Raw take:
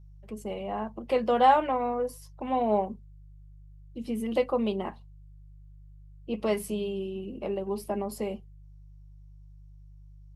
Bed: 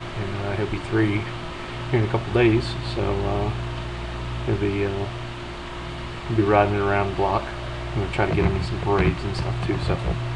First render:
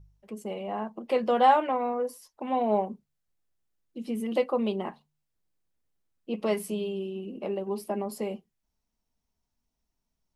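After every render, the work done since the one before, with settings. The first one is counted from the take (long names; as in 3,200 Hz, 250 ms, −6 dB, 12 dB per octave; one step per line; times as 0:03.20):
hum removal 50 Hz, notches 3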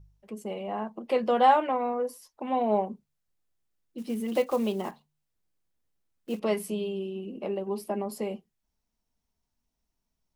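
0:03.98–0:06.41: one scale factor per block 5 bits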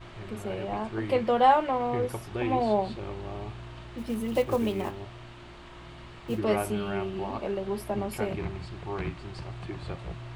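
mix in bed −13.5 dB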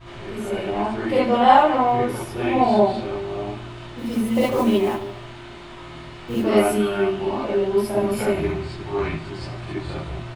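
repeating echo 75 ms, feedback 50%, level −13 dB
reverb whose tail is shaped and stops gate 90 ms rising, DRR −7.5 dB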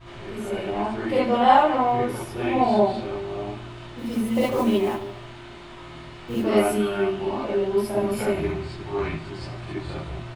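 level −2.5 dB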